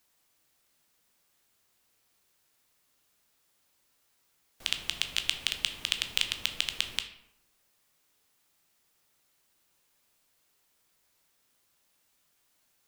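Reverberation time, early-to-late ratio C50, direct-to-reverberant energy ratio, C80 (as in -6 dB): 0.85 s, 10.0 dB, 6.5 dB, 13.0 dB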